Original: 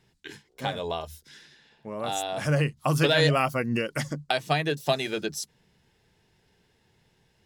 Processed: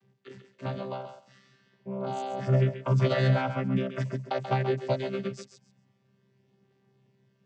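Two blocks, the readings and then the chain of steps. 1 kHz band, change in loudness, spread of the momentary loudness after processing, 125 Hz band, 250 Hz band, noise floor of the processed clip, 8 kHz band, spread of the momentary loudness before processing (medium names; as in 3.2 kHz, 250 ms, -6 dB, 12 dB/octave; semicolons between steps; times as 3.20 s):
-4.0 dB, -2.5 dB, 15 LU, +2.0 dB, -1.5 dB, -69 dBFS, under -15 dB, 18 LU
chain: vocoder on a held chord bare fifth, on C3; thinning echo 135 ms, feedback 19%, high-pass 420 Hz, level -8 dB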